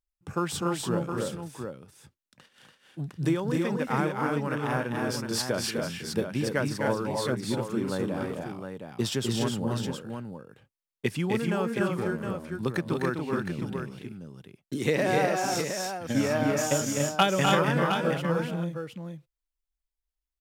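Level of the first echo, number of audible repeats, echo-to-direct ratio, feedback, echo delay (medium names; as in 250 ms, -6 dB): -5.0 dB, 3, -0.5 dB, no regular repeats, 253 ms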